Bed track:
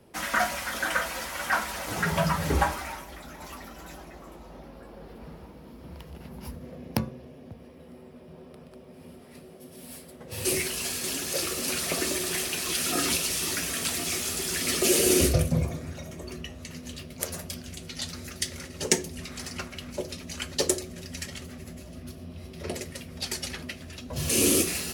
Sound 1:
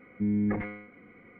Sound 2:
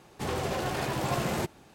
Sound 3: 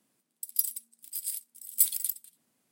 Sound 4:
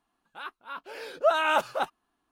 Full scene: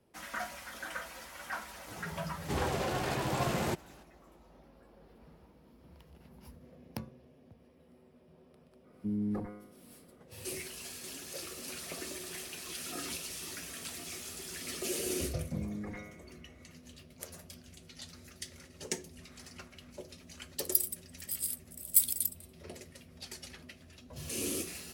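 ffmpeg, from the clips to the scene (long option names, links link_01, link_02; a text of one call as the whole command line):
ffmpeg -i bed.wav -i cue0.wav -i cue1.wav -i cue2.wav -filter_complex "[1:a]asplit=2[link_01][link_02];[0:a]volume=-13.5dB[link_03];[link_01]lowpass=frequency=1300:width=0.5412,lowpass=frequency=1300:width=1.3066[link_04];[link_02]acompressor=threshold=-29dB:ratio=6:attack=3.2:release=140:knee=1:detection=peak[link_05];[2:a]atrim=end=1.74,asetpts=PTS-STARTPTS,volume=-2.5dB,afade=type=in:duration=0.004:curve=hsin,afade=type=out:start_time=1.736:duration=0.004:curve=hsin,adelay=2290[link_06];[link_04]atrim=end=1.39,asetpts=PTS-STARTPTS,volume=-6.5dB,afade=type=in:duration=0.004:curve=hsin,afade=type=out:start_time=1.386:duration=0.004:curve=hsin,adelay=8840[link_07];[link_05]atrim=end=1.39,asetpts=PTS-STARTPTS,volume=-8dB,afade=type=in:duration=0.004:curve=hsin,afade=type=out:start_time=1.386:duration=0.004:curve=hsin,adelay=15330[link_08];[3:a]atrim=end=2.71,asetpts=PTS-STARTPTS,volume=-1dB,afade=type=in:duration=0.004:curve=hsin,afade=type=out:start_time=2.706:duration=0.004:curve=hsin,adelay=20160[link_09];[link_03][link_06][link_07][link_08][link_09]amix=inputs=5:normalize=0" out.wav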